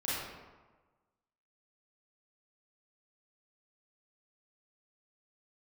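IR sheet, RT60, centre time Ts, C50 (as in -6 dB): 1.3 s, 0.101 s, -3.5 dB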